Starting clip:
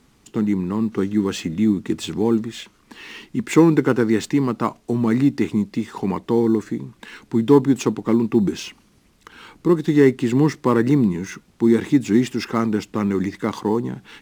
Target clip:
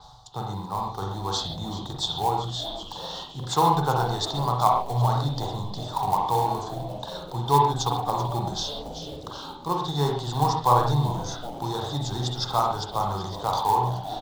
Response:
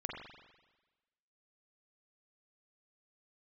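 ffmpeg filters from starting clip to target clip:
-filter_complex "[0:a]firequalizer=gain_entry='entry(130,0);entry(230,-25);entry(770,13);entry(2300,-30);entry(3600,10);entry(10000,-14)':delay=0.05:min_phase=1,asplit=8[a][b][c][d][e][f][g][h];[b]adelay=384,afreqshift=-140,volume=-14.5dB[i];[c]adelay=768,afreqshift=-280,volume=-18.7dB[j];[d]adelay=1152,afreqshift=-420,volume=-22.8dB[k];[e]adelay=1536,afreqshift=-560,volume=-27dB[l];[f]adelay=1920,afreqshift=-700,volume=-31.1dB[m];[g]adelay=2304,afreqshift=-840,volume=-35.3dB[n];[h]adelay=2688,afreqshift=-980,volume=-39.4dB[o];[a][i][j][k][l][m][n][o]amix=inputs=8:normalize=0,acrossover=split=220|1200[p][q][r];[q]acrusher=bits=4:mode=log:mix=0:aa=0.000001[s];[p][s][r]amix=inputs=3:normalize=0[t];[1:a]atrim=start_sample=2205,atrim=end_sample=6615[u];[t][u]afir=irnorm=-1:irlink=0,areverse,acompressor=mode=upward:threshold=-29dB:ratio=2.5,areverse,adynamicequalizer=threshold=0.00631:dfrequency=5800:dqfactor=0.7:tfrequency=5800:tqfactor=0.7:attack=5:release=100:ratio=0.375:range=2:mode=boostabove:tftype=highshelf"

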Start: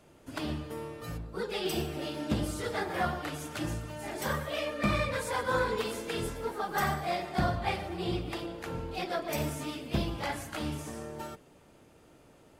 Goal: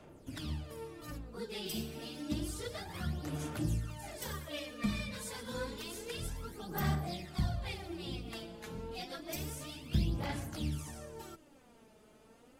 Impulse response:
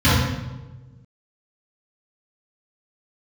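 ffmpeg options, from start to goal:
-filter_complex "[0:a]acrossover=split=270|3000[a][b][c];[b]acompressor=threshold=-48dB:ratio=2.5[d];[a][d][c]amix=inputs=3:normalize=0,aphaser=in_gain=1:out_gain=1:delay=4.7:decay=0.63:speed=0.29:type=sinusoidal,volume=-4.5dB"

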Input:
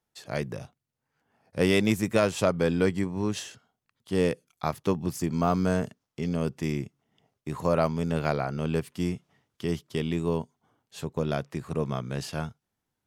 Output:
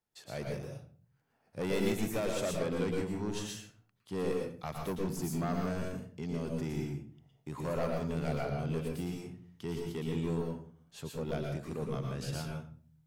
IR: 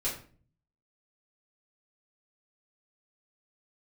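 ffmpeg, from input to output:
-filter_complex "[0:a]asoftclip=type=tanh:threshold=-22.5dB,asplit=2[a][b];[1:a]atrim=start_sample=2205,highshelf=f=11k:g=11.5,adelay=108[c];[b][c]afir=irnorm=-1:irlink=0,volume=-6dB[d];[a][d]amix=inputs=2:normalize=0,volume=-7dB"

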